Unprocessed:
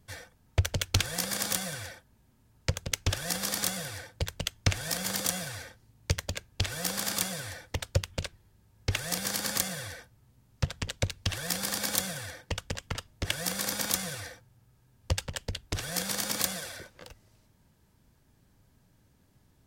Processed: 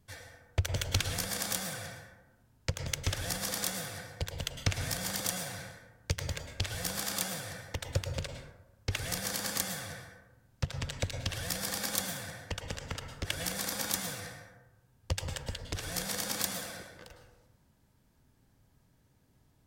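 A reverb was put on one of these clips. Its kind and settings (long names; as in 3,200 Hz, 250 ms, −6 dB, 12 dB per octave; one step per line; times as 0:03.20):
dense smooth reverb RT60 1 s, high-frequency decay 0.4×, pre-delay 95 ms, DRR 5 dB
level −4 dB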